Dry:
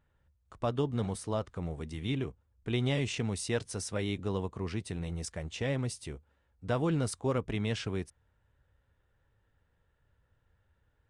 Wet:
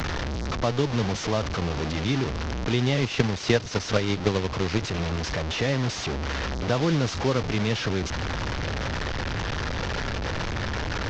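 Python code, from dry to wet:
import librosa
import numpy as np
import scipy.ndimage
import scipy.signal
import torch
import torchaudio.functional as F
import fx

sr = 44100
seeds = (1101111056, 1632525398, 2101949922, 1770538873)

y = fx.delta_mod(x, sr, bps=32000, step_db=-30.5)
y = fx.transient(y, sr, attack_db=11, sustain_db=-6, at=(3.01, 4.82))
y = fx.band_squash(y, sr, depth_pct=40)
y = F.gain(torch.from_numpy(y), 6.5).numpy()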